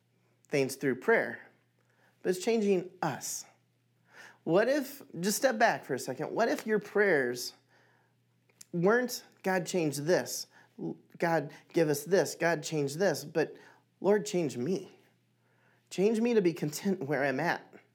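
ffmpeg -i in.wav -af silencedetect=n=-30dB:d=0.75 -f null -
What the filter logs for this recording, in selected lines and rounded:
silence_start: 1.34
silence_end: 2.26 | silence_duration: 0.92
silence_start: 3.36
silence_end: 4.47 | silence_duration: 1.11
silence_start: 7.47
silence_end: 8.61 | silence_duration: 1.15
silence_start: 14.78
silence_end: 15.94 | silence_duration: 1.16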